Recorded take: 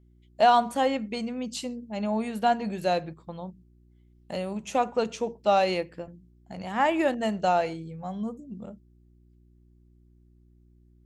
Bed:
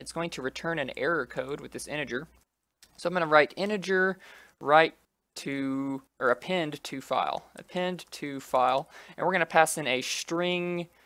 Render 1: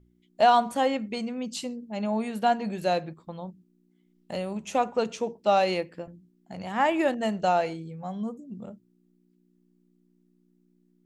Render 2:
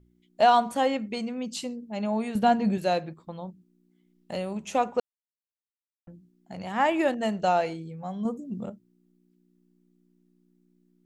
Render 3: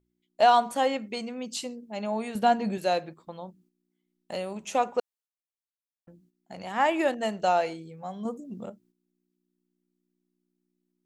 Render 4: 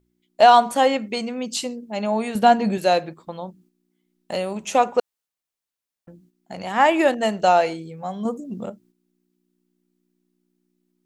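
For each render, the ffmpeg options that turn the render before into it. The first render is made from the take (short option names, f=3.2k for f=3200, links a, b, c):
-af "bandreject=f=60:t=h:w=4,bandreject=f=120:t=h:w=4"
-filter_complex "[0:a]asettb=1/sr,asplit=3[a][b][c];[a]atrim=end=2.354[d];[b]atrim=start=2.35:end=2.78,asetpts=PTS-STARTPTS,afade=t=in:d=0.004:c=qsin,afade=t=out:st=0.426:d=0.004:c=qsin,equalizer=f=78:t=o:w=2.9:g=14.5[e];[c]atrim=start=2.776[f];[d][e]acrossfade=d=0.004:c1=hsin:c2=qsin[g];[g][f]acrossfade=d=0.004:c1=qsin:c2=hsin,asettb=1/sr,asplit=3[h][i][j];[h]atrim=end=8.254[k];[i]atrim=start=8.25:end=8.7,asetpts=PTS-STARTPTS,afade=t=in:d=0.004:c=qsin,afade=t=out:st=0.446:d=0.004:c=qsin,acontrast=34[l];[j]atrim=start=8.696[m];[k][l]acrossfade=d=0.004:c1=hsin:c2=qsin[n];[n][m]acrossfade=d=0.004:c1=qsin:c2=hsin,asplit=3[o][p][q];[o]atrim=end=5,asetpts=PTS-STARTPTS,afade=t=out:st=4.996:d=0.004:c=hsin[r];[p]atrim=start=5:end=6.07,asetpts=PTS-STARTPTS,volume=0[s];[q]atrim=start=6.07,asetpts=PTS-STARTPTS,afade=t=in:d=0.004:c=hsin[t];[r][s][t]concat=n=3:v=0:a=1"
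-af "agate=range=-9dB:threshold=-58dB:ratio=16:detection=peak,bass=f=250:g=-8,treble=f=4k:g=2"
-af "volume=7.5dB,alimiter=limit=-2dB:level=0:latency=1"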